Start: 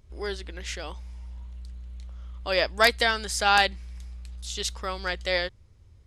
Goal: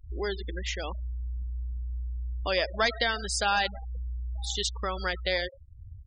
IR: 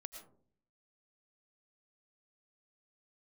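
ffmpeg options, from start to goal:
-filter_complex "[0:a]asoftclip=type=hard:threshold=-12.5dB,acompressor=threshold=-44dB:ratio=2,equalizer=frequency=3400:width=2.4:gain=2,asplit=2[link_01][link_02];[link_02]adelay=932.9,volume=-22dB,highshelf=frequency=4000:gain=-21[link_03];[link_01][link_03]amix=inputs=2:normalize=0,asplit=2[link_04][link_05];[1:a]atrim=start_sample=2205[link_06];[link_05][link_06]afir=irnorm=-1:irlink=0,volume=-4.5dB[link_07];[link_04][link_07]amix=inputs=2:normalize=0,afftfilt=real='re*gte(hypot(re,im),0.0141)':imag='im*gte(hypot(re,im),0.0141)':win_size=1024:overlap=0.75,volume=7dB"

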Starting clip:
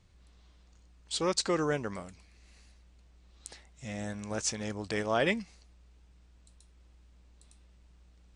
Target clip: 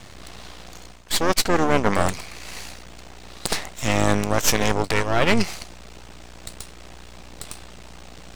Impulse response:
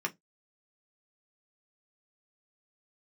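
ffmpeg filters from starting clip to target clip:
-filter_complex "[0:a]highpass=frequency=270:poles=1,equalizer=frequency=720:width=2.9:gain=5,areverse,acompressor=threshold=-43dB:ratio=16,areverse,aeval=exprs='max(val(0),0)':channel_layout=same,tremolo=f=160:d=0.182,asplit=2[link_01][link_02];[link_02]asetrate=22050,aresample=44100,atempo=2,volume=-9dB[link_03];[link_01][link_03]amix=inputs=2:normalize=0,alimiter=level_in=32dB:limit=-1dB:release=50:level=0:latency=1,volume=-1dB"

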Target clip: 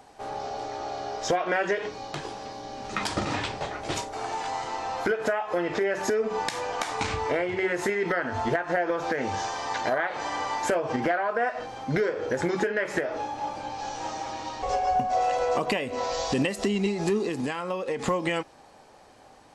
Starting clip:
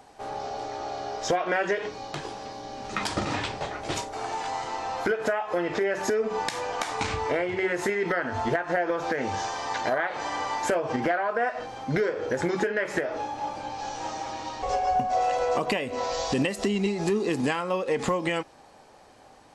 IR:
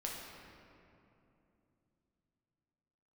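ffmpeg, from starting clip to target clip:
-filter_complex "[0:a]asettb=1/sr,asplit=3[link_01][link_02][link_03];[link_01]atrim=end=17.254[link_04];[link_02]atrim=start=17.25:end=18.06,asetpts=PTS-STARTPTS,afade=type=in:duration=0.004:curve=qsin,afade=type=out:start_time=0.806:duration=0.004:curve=qsin,acompressor=threshold=-26dB:ratio=6[link_05];[link_03]atrim=start=18.056[link_06];[link_04][link_05]acrossfade=duration=0.004:curve1=hsin:curve2=qsin[link_07];[link_07][link_06]acrossfade=duration=0.004:curve1=qsin:curve2=hsin"

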